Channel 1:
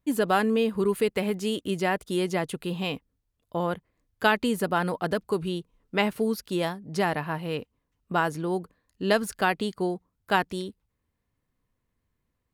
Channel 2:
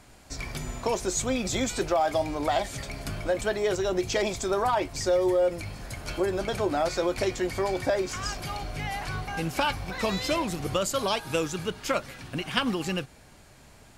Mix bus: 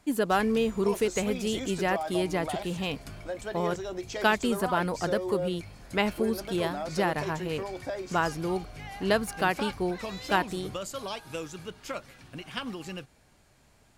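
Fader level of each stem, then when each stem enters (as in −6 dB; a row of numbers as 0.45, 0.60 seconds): −2.0, −9.0 decibels; 0.00, 0.00 seconds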